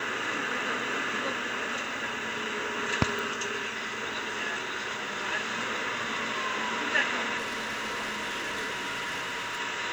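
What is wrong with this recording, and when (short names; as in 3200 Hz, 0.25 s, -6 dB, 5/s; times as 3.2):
3.19 pop
7.37–9.59 clipped -30 dBFS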